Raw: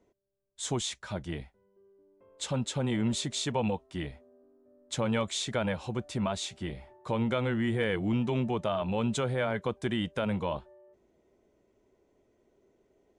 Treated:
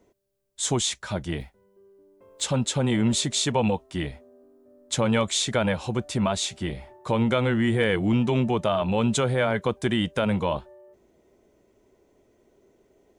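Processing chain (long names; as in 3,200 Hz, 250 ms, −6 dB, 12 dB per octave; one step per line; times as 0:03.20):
0:01.40–0:02.44: one scale factor per block 7 bits
high-shelf EQ 6,600 Hz +5.5 dB
level +6.5 dB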